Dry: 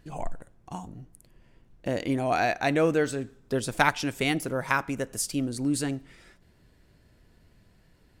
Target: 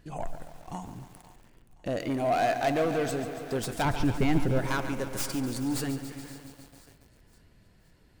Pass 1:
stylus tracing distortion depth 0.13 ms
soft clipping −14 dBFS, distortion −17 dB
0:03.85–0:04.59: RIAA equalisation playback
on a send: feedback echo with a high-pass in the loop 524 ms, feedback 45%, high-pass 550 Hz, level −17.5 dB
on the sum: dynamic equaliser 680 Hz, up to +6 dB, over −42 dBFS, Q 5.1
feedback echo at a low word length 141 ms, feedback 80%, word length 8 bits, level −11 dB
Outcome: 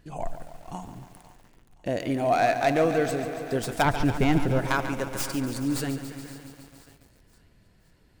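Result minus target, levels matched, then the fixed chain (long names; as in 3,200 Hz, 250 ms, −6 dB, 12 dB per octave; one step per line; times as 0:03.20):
soft clipping: distortion −9 dB
stylus tracing distortion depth 0.13 ms
soft clipping −24.5 dBFS, distortion −8 dB
0:03.85–0:04.59: RIAA equalisation playback
on a send: feedback echo with a high-pass in the loop 524 ms, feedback 45%, high-pass 550 Hz, level −17.5 dB
on the sum: dynamic equaliser 680 Hz, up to +6 dB, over −42 dBFS, Q 5.1
feedback echo at a low word length 141 ms, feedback 80%, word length 8 bits, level −11 dB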